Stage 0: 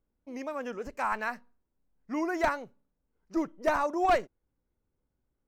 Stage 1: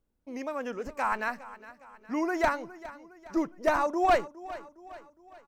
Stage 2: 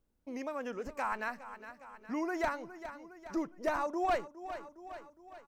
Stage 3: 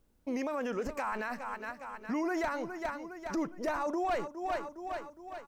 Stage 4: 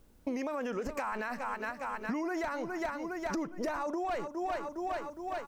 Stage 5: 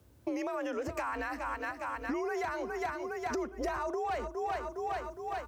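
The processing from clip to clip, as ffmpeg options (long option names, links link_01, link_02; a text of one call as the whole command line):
ffmpeg -i in.wav -af "aecho=1:1:411|822|1233|1644:0.141|0.0678|0.0325|0.0156,volume=1.5dB" out.wav
ffmpeg -i in.wav -af "acompressor=threshold=-42dB:ratio=1.5" out.wav
ffmpeg -i in.wav -af "alimiter=level_in=10dB:limit=-24dB:level=0:latency=1:release=20,volume=-10dB,volume=8dB" out.wav
ffmpeg -i in.wav -af "acompressor=threshold=-41dB:ratio=6,volume=8.5dB" out.wav
ffmpeg -i in.wav -af "afreqshift=53" out.wav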